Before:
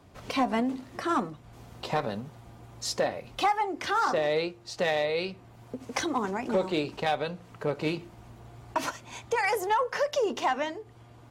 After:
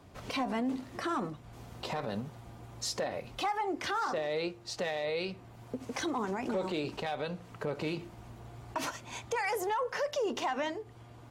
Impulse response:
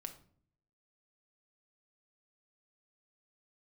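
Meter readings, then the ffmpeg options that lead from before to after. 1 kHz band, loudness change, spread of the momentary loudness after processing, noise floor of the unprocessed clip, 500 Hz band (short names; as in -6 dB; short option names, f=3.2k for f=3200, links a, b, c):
-6.5 dB, -5.5 dB, 13 LU, -52 dBFS, -5.5 dB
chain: -af "alimiter=level_in=1.5dB:limit=-24dB:level=0:latency=1:release=55,volume=-1.5dB"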